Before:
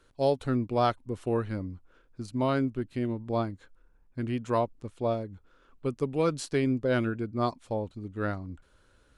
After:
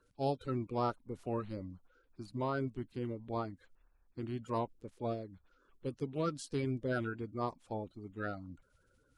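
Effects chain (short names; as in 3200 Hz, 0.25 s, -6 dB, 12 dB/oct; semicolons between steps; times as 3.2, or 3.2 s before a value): bin magnitudes rounded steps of 30 dB; gain -8 dB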